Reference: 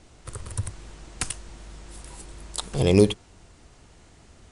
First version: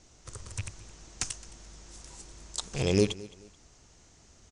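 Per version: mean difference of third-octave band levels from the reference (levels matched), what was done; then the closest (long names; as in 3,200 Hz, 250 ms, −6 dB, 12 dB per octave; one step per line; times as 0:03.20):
2.0 dB: loose part that buzzes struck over −28 dBFS, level −21 dBFS
low-pass filter 8,500 Hz 24 dB per octave
parametric band 6,200 Hz +12 dB 0.74 octaves
repeating echo 216 ms, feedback 31%, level −20 dB
level −7.5 dB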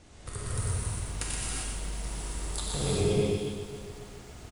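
12.0 dB: downward compressor 4 to 1, threshold −31 dBFS, peak gain reduction 16.5 dB
on a send: single-tap delay 122 ms −5.5 dB
on the sum: reverb whose tail is shaped and stops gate 430 ms flat, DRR −6.5 dB
feedback echo at a low word length 275 ms, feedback 55%, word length 8 bits, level −11 dB
level −3.5 dB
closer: first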